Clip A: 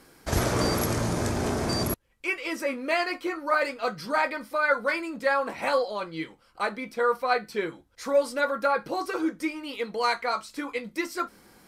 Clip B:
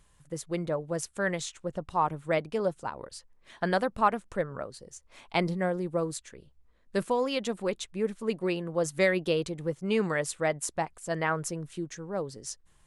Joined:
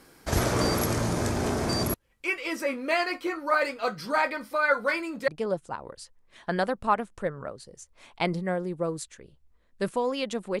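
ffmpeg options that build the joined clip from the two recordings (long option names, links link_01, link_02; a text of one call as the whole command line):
ffmpeg -i cue0.wav -i cue1.wav -filter_complex "[0:a]apad=whole_dur=10.6,atrim=end=10.6,atrim=end=5.282[link_01];[1:a]atrim=start=2.418:end=7.74[link_02];[link_01][link_02]acrossfade=duration=0.004:curve1=hsin:curve2=hsin" out.wav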